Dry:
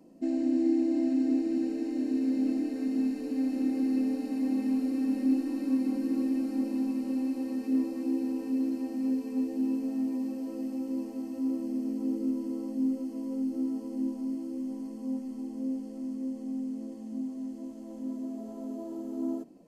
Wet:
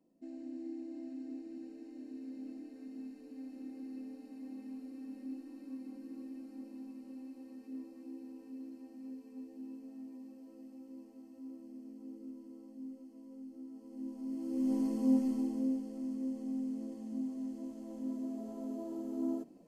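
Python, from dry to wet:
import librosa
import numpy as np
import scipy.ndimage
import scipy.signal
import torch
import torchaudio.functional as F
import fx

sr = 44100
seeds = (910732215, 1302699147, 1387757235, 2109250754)

y = fx.gain(x, sr, db=fx.line((13.69, -17.5), (14.29, -7.0), (14.74, 5.5), (15.27, 5.5), (15.84, -3.0)))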